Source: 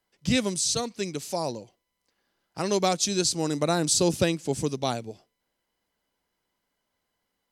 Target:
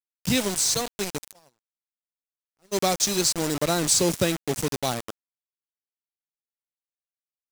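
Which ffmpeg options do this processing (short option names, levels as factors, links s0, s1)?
-filter_complex "[0:a]acrusher=bits=4:mix=0:aa=0.000001,equalizer=f=8000:t=o:w=1.4:g=3.5,asplit=3[s0][s1][s2];[s0]afade=t=out:st=1.31:d=0.02[s3];[s1]agate=range=0.00891:threshold=0.0794:ratio=16:detection=peak,afade=t=in:st=1.31:d=0.02,afade=t=out:st=2.77:d=0.02[s4];[s2]afade=t=in:st=2.77:d=0.02[s5];[s3][s4][s5]amix=inputs=3:normalize=0"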